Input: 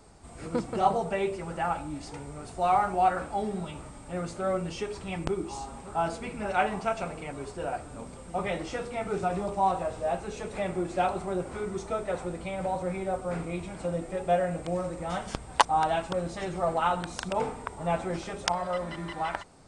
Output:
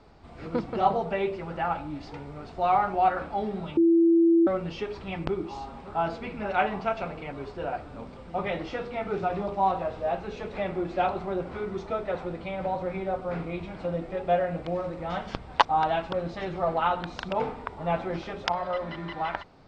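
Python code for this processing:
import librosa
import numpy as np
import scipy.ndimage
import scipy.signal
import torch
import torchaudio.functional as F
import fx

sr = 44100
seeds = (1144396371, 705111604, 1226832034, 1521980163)

y = fx.edit(x, sr, fx.bleep(start_s=3.77, length_s=0.7, hz=334.0, db=-17.0), tone=tone)
y = scipy.signal.sosfilt(scipy.signal.butter(4, 4500.0, 'lowpass', fs=sr, output='sos'), y)
y = fx.hum_notches(y, sr, base_hz=60, count=3)
y = F.gain(torch.from_numpy(y), 1.0).numpy()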